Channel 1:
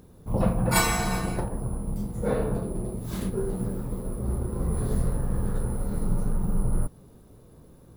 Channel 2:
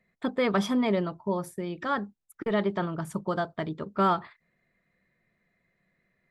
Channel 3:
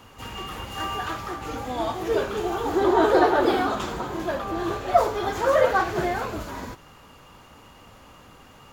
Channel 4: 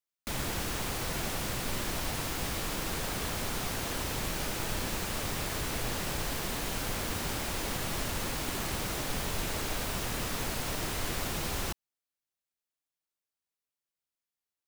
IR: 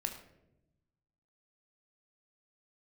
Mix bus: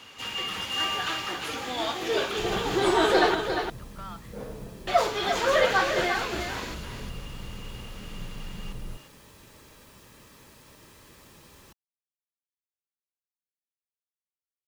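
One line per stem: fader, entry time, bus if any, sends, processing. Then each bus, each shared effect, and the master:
-13.0 dB, 2.10 s, no send, no echo send, steep low-pass 9300 Hz
-1.5 dB, 0.00 s, no send, no echo send, passive tone stack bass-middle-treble 10-0-10; limiter -33 dBFS, peak gain reduction 9.5 dB
-3.5 dB, 0.00 s, muted 3.35–4.87, no send, echo send -7.5 dB, weighting filter D
-17.0 dB, 0.00 s, no send, no echo send, notch comb 720 Hz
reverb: off
echo: echo 0.351 s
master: dry

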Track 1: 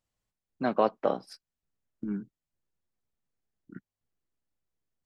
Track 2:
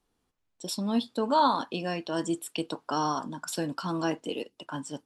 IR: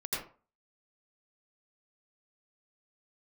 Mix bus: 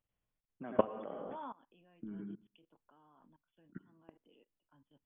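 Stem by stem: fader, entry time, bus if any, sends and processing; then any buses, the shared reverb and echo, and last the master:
-4.5 dB, 0.00 s, send -3.5 dB, dry
-15.5 dB, 0.00 s, no send, three-band expander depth 100%; auto duck -7 dB, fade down 1.20 s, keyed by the first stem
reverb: on, RT60 0.40 s, pre-delay 77 ms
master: brick-wall FIR low-pass 3500 Hz; low shelf 280 Hz +2 dB; level quantiser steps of 22 dB

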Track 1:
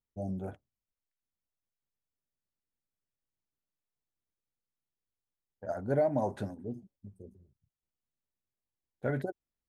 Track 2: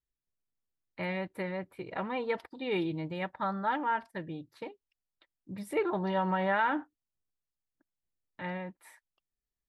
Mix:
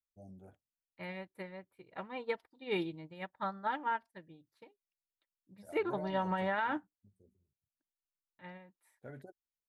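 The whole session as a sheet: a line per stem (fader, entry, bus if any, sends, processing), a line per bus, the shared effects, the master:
-17.0 dB, 0.00 s, no send, dry
+3.0 dB, 0.00 s, no send, upward expander 2.5:1, over -40 dBFS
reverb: off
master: high shelf 4800 Hz +6.5 dB; limiter -24 dBFS, peak gain reduction 9 dB

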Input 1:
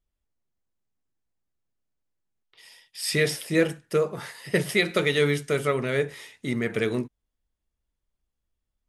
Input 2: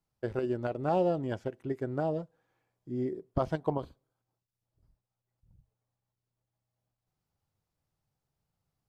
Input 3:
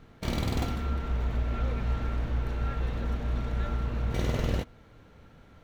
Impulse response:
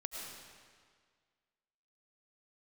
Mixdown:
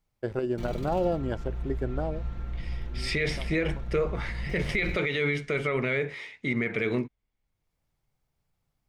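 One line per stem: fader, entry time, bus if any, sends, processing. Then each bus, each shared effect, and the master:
+0.5 dB, 0.00 s, no send, LPF 4000 Hz 12 dB/oct; bell 2200 Hz +11 dB 0.23 oct
+2.5 dB, 0.00 s, no send, auto duck -16 dB, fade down 0.65 s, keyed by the first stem
-13.5 dB, 0.35 s, no send, low shelf 160 Hz +11 dB; comb 5.7 ms, depth 92%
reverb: off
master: limiter -17.5 dBFS, peak gain reduction 13 dB

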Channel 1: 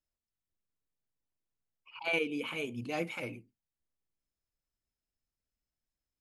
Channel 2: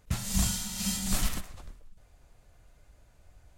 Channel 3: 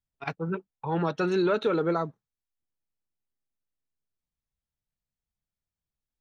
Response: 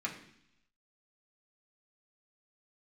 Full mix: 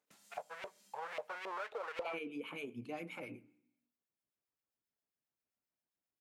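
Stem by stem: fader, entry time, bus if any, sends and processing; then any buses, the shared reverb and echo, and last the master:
+1.5 dB, 0.00 s, send -18 dB, HPF 150 Hz 12 dB/oct; bell 5800 Hz -7.5 dB 2.2 oct; harmonic tremolo 7.5 Hz, depth 70%, crossover 1400 Hz
-19.0 dB, 0.00 s, no send, HPF 260 Hz 24 dB/oct; compressor 5:1, threshold -44 dBFS, peak gain reduction 14.5 dB; auto duck -10 dB, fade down 1.90 s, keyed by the first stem
-6.5 dB, 0.10 s, send -21.5 dB, half-waves squared off; resonant low shelf 390 Hz -9.5 dB, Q 3; LFO band-pass saw up 3.7 Hz 600–2500 Hz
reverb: on, RT60 0.70 s, pre-delay 3 ms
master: compressor 2:1, threshold -45 dBFS, peak gain reduction 10.5 dB

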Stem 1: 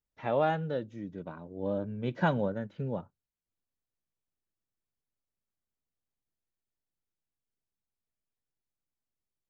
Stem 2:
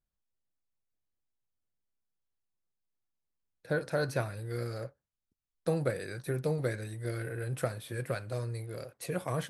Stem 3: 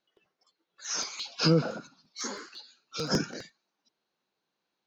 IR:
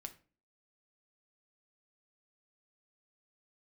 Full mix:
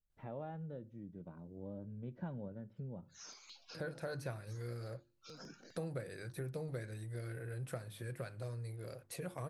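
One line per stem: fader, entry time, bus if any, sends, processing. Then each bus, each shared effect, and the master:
-13.5 dB, 0.00 s, send -3.5 dB, tilt -3.5 dB/oct
+0.5 dB, 0.10 s, send -17 dB, low shelf 140 Hz +6.5 dB; notches 50/100/150/200/250/300/350 Hz
-18.5 dB, 2.30 s, no send, limiter -22 dBFS, peak gain reduction 8.5 dB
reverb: on, RT60 0.40 s, pre-delay 5 ms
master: compressor 2:1, threshold -50 dBFS, peak gain reduction 14.5 dB

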